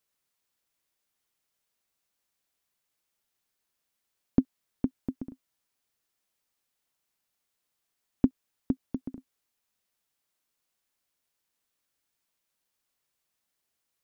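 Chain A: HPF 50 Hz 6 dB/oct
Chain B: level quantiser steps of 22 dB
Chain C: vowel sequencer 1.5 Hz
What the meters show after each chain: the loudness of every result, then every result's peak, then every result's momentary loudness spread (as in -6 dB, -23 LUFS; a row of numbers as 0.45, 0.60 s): -33.0, -34.0, -38.5 LUFS; -8.5, -12.0, -17.0 dBFS; 15, 19, 17 LU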